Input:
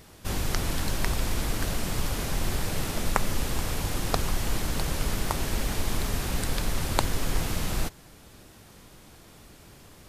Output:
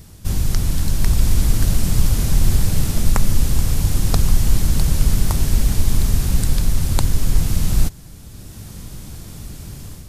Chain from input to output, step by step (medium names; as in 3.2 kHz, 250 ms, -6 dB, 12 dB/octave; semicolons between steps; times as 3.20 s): tone controls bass +15 dB, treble +9 dB; level rider gain up to 7 dB; trim -1 dB